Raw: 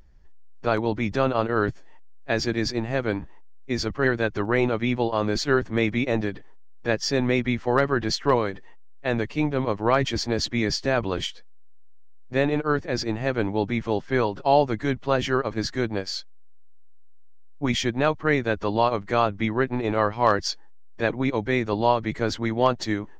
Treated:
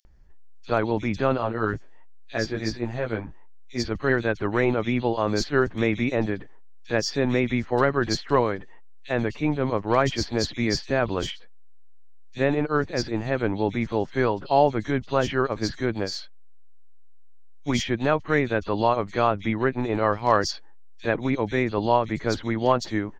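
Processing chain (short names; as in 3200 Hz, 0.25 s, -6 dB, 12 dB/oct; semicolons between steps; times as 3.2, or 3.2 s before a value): 1.35–3.8 chorus 1.3 Hz, delay 16.5 ms, depth 2.5 ms; bands offset in time highs, lows 50 ms, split 3300 Hz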